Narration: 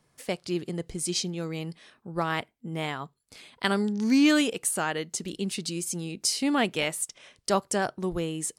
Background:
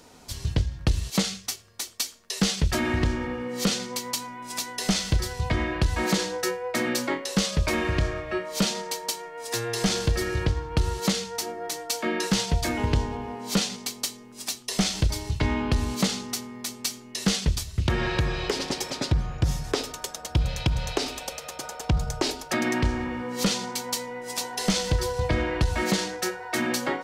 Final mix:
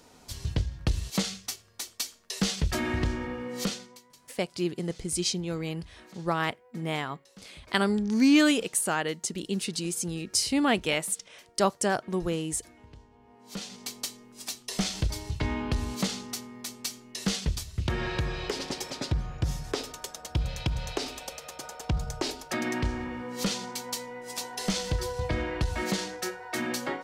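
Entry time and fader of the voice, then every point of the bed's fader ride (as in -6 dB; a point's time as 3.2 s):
4.10 s, +0.5 dB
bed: 3.62 s -4 dB
4.12 s -27.5 dB
13.1 s -27.5 dB
13.89 s -5 dB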